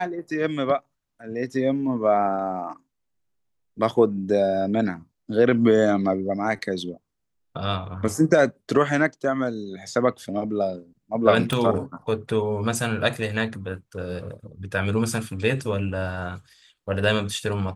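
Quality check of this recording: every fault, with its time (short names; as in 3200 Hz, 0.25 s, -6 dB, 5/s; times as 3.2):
11.53 pop -11 dBFS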